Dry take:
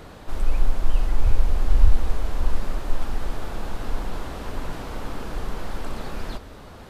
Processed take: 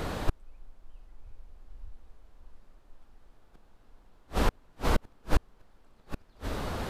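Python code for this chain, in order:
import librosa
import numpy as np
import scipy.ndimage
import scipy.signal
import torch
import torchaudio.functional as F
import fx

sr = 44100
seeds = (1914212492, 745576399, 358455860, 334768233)

y = fx.gate_flip(x, sr, shuts_db=-20.0, range_db=-39)
y = y * librosa.db_to_amplitude(8.5)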